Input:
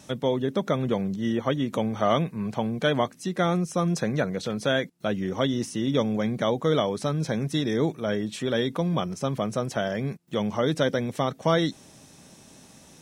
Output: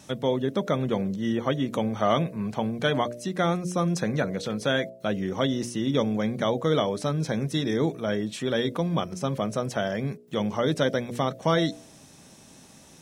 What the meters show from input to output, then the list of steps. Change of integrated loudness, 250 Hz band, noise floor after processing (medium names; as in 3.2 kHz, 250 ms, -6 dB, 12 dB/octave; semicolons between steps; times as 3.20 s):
-0.5 dB, -0.5 dB, -52 dBFS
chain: de-hum 59.85 Hz, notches 11